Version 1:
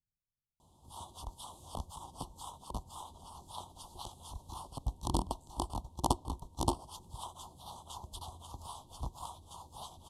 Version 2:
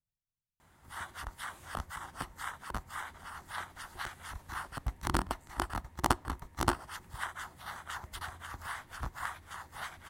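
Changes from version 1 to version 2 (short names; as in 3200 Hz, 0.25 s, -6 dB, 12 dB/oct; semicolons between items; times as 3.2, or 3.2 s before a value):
background: remove LPF 12000 Hz 24 dB/oct; master: remove elliptic band-stop 980–3300 Hz, stop band 70 dB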